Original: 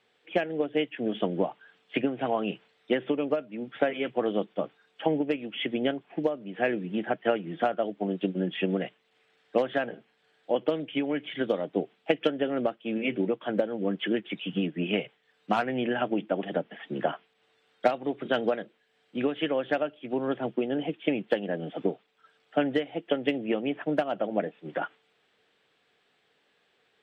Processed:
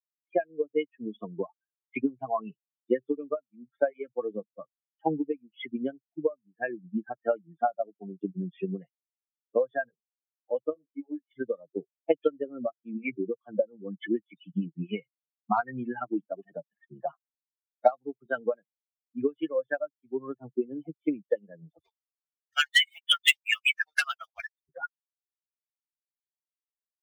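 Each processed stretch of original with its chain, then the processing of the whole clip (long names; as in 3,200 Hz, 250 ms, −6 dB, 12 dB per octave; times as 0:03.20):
0:10.73–0:11.31: band-pass filter 360–3,300 Hz + spectral tilt −3 dB per octave + micro pitch shift up and down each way 15 cents
0:21.79–0:24.69: high-pass filter 1,500 Hz + spectral tilt +4 dB per octave + leveller curve on the samples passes 3
whole clip: spectral dynamics exaggerated over time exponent 3; low-shelf EQ 120 Hz −9.5 dB; level +7 dB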